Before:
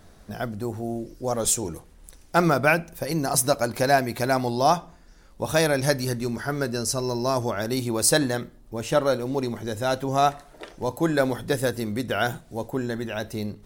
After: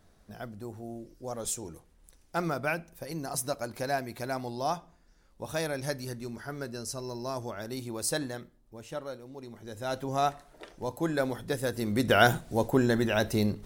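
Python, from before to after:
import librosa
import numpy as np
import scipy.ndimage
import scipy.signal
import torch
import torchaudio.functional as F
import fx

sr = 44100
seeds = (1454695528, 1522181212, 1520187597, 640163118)

y = fx.gain(x, sr, db=fx.line((8.22, -11.0), (9.35, -19.0), (9.99, -7.0), (11.64, -7.0), (12.11, 3.5)))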